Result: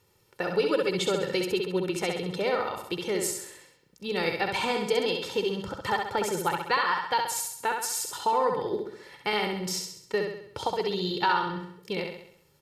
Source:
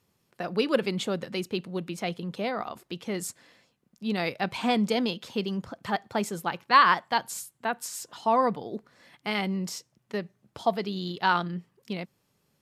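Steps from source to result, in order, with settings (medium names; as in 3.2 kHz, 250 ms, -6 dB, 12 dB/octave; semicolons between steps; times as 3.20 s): compression 4:1, threshold -29 dBFS, peak gain reduction 13.5 dB; comb 2.2 ms, depth 70%; on a send: feedback delay 66 ms, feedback 51%, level -4.5 dB; on the sum: trim +3.5 dB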